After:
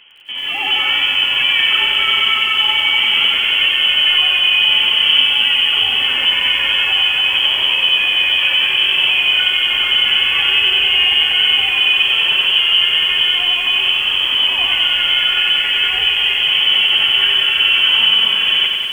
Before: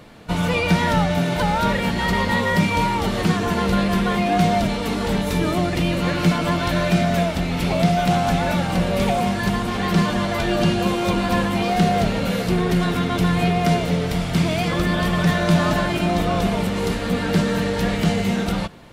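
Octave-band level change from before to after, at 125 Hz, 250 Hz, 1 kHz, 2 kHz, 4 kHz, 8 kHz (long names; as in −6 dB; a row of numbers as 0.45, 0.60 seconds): below −20 dB, below −20 dB, −5.0 dB, +12.0 dB, +21.5 dB, can't be measured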